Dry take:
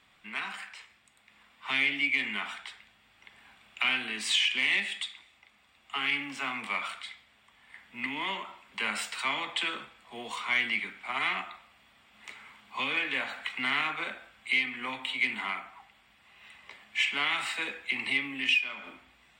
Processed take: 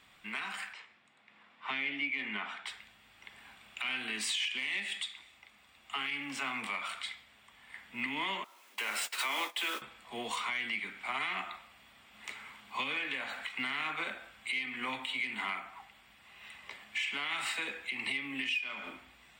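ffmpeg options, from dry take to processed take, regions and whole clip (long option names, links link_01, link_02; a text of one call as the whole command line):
ffmpeg -i in.wav -filter_complex "[0:a]asettb=1/sr,asplit=3[link_01][link_02][link_03];[link_01]atrim=end=0.734[link_04];[link_02]atrim=start=0.73:end=2.66,asetpts=PTS-STARTPTS,afade=type=in:duration=0.004:curve=qsin,afade=type=out:start_time=1.926:duration=0.004:curve=qsin,highpass=150,lowpass=6200,highshelf=frequency=3600:gain=-11.5[link_05];[link_03]atrim=start=2.656[link_06];[link_04][link_05]acrossfade=duration=0.004:curve1=hsin:curve2=qsin[link_07];[link_07][link_06]acrossfade=duration=0.004:curve1=qsin:curve2=hsin,asettb=1/sr,asplit=3[link_08][link_09][link_10];[link_08]atrim=end=8.444[link_11];[link_09]atrim=start=8.44:end=9.82,asetpts=PTS-STARTPTS,afade=type=in:duration=0.004:curve=qsin,afade=type=out:start_time=1.376:duration=0.004:curve=qsin,aeval=exprs='val(0)+0.5*0.0168*sgn(val(0))':channel_layout=same,agate=range=-22dB:threshold=-35dB:ratio=16:release=100:detection=peak,highpass=frequency=280:width=0.5412,highpass=frequency=280:width=1.3066[link_12];[link_10]atrim=start=9.816[link_13];[link_11][link_12]acrossfade=duration=0.004:curve1=hsin:curve2=qsin[link_14];[link_14][link_13]acrossfade=duration=0.004:curve1=qsin:curve2=hsin,highshelf=frequency=8500:gain=5.5,alimiter=level_in=2dB:limit=-24dB:level=0:latency=1:release=265,volume=-2dB,volume=1.5dB" out.wav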